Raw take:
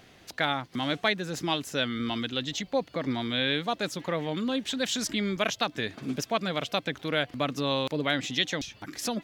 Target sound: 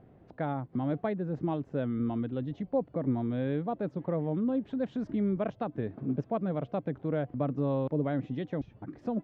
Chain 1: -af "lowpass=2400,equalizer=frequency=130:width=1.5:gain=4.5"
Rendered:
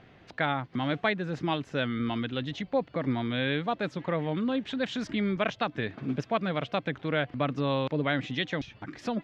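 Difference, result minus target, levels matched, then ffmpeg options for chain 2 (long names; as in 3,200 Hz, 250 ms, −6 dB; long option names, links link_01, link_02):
2,000 Hz band +13.5 dB
-af "lowpass=660,equalizer=frequency=130:width=1.5:gain=4.5"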